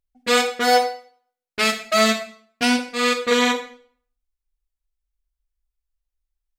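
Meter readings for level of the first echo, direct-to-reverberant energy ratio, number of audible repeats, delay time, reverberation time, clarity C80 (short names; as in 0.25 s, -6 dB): none, 8.0 dB, none, none, 0.55 s, 14.0 dB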